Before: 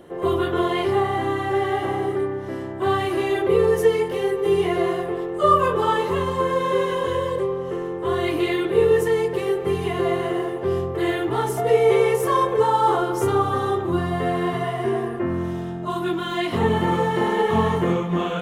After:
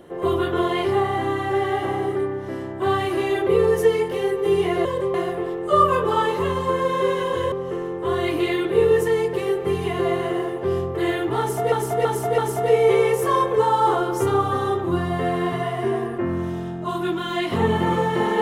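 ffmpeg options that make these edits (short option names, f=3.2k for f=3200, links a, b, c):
-filter_complex "[0:a]asplit=7[a][b][c][d][e][f][g];[a]atrim=end=4.852[h];[b]atrim=start=7.228:end=7.522[i];[c]atrim=start=4.848:end=7.232[j];[d]atrim=start=7.518:end=11.722[k];[e]atrim=start=11.388:end=11.722[l];[f]atrim=start=11.388:end=11.722[m];[g]atrim=start=11.388[n];[h][i]acrossfade=d=0.004:c1=hsin:c2=hsin[o];[o][j]acrossfade=d=0.004:c1=hsin:c2=hsin[p];[p][k]acrossfade=d=0.004:c1=hsin:c2=hsin[q];[q][l]acrossfade=d=0.004:c1=hsin:c2=hsin[r];[r][m]acrossfade=d=0.004:c1=hsin:c2=hsin[s];[s][n]acrossfade=d=0.004:c1=hsin:c2=hsin"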